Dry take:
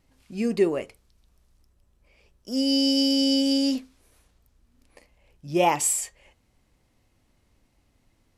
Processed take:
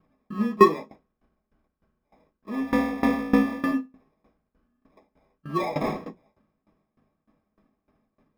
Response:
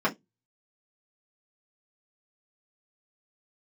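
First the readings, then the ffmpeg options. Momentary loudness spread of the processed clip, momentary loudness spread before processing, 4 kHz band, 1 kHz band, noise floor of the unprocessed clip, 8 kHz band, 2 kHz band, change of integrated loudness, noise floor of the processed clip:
17 LU, 12 LU, -18.5 dB, +3.5 dB, -68 dBFS, under -20 dB, +4.5 dB, -1.5 dB, -80 dBFS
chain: -filter_complex "[0:a]acrusher=samples=30:mix=1:aa=0.000001[a];[1:a]atrim=start_sample=2205[b];[a][b]afir=irnorm=-1:irlink=0,aeval=exprs='val(0)*pow(10,-20*if(lt(mod(3.3*n/s,1),2*abs(3.3)/1000),1-mod(3.3*n/s,1)/(2*abs(3.3)/1000),(mod(3.3*n/s,1)-2*abs(3.3)/1000)/(1-2*abs(3.3)/1000))/20)':c=same,volume=-8dB"

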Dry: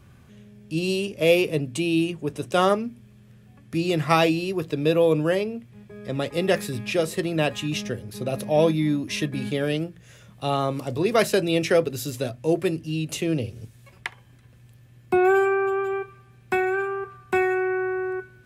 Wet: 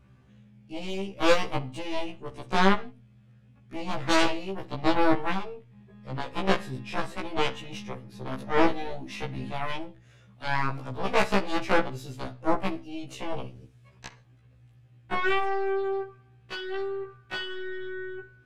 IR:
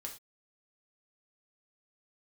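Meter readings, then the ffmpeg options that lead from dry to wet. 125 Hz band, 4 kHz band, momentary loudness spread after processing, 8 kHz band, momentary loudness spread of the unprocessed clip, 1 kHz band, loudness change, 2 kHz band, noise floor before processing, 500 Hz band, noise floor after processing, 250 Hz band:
-8.0 dB, -3.0 dB, 15 LU, -8.0 dB, 12 LU, -1.0 dB, -5.5 dB, -3.0 dB, -52 dBFS, -8.0 dB, -57 dBFS, -6.5 dB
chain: -filter_complex "[0:a]aemphasis=mode=reproduction:type=50fm,aeval=exprs='0.562*(cos(1*acos(clip(val(0)/0.562,-1,1)))-cos(1*PI/2))+0.141*(cos(2*acos(clip(val(0)/0.562,-1,1)))-cos(2*PI/2))+0.158*(cos(4*acos(clip(val(0)/0.562,-1,1)))-cos(4*PI/2))+0.141*(cos(7*acos(clip(val(0)/0.562,-1,1)))-cos(7*PI/2))+0.00398*(cos(8*acos(clip(val(0)/0.562,-1,1)))-cos(8*PI/2))':c=same,asplit=2[a][b];[1:a]atrim=start_sample=2205,lowpass=6.3k,adelay=46[c];[b][c]afir=irnorm=-1:irlink=0,volume=-13.5dB[d];[a][d]amix=inputs=2:normalize=0,afftfilt=real='re*1.73*eq(mod(b,3),0)':imag='im*1.73*eq(mod(b,3),0)':win_size=2048:overlap=0.75,volume=-2dB"

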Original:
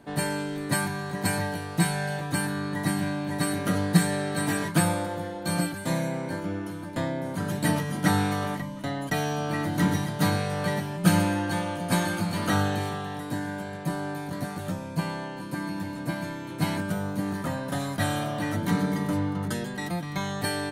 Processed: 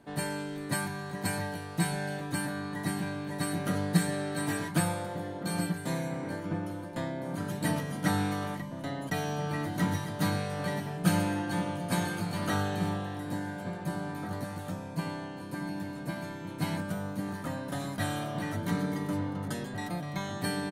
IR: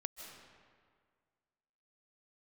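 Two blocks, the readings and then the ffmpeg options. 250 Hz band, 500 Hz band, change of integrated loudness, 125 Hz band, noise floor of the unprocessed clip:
-5.0 dB, -5.0 dB, -5.0 dB, -5.0 dB, -37 dBFS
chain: -filter_complex "[0:a]asplit=2[a][b];[b]adelay=1749,volume=-7dB,highshelf=f=4k:g=-39.4[c];[a][c]amix=inputs=2:normalize=0,volume=-5.5dB"

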